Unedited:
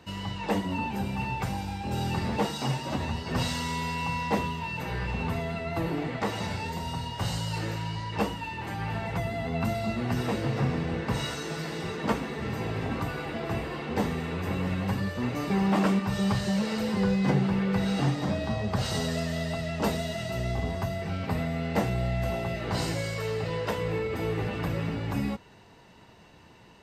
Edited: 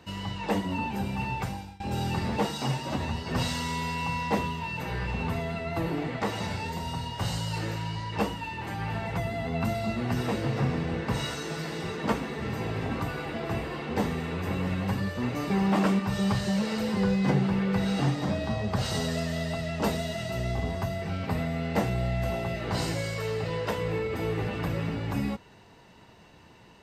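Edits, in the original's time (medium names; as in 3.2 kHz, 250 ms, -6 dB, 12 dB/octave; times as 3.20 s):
1.39–1.80 s: fade out, to -22 dB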